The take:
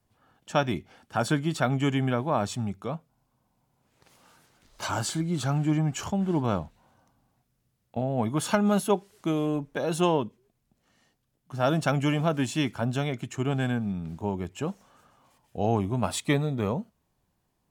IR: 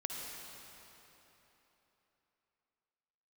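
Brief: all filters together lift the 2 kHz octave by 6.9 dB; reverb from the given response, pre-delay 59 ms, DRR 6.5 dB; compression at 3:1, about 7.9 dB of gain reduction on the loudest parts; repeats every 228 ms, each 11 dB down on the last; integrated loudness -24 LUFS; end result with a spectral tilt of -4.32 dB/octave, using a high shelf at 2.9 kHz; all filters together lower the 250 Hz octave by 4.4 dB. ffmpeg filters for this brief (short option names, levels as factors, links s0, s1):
-filter_complex "[0:a]equalizer=f=250:t=o:g=-6.5,equalizer=f=2000:t=o:g=8,highshelf=f=2900:g=4,acompressor=threshold=0.0398:ratio=3,aecho=1:1:228|456|684:0.282|0.0789|0.0221,asplit=2[s0][s1];[1:a]atrim=start_sample=2205,adelay=59[s2];[s1][s2]afir=irnorm=-1:irlink=0,volume=0.398[s3];[s0][s3]amix=inputs=2:normalize=0,volume=2.37"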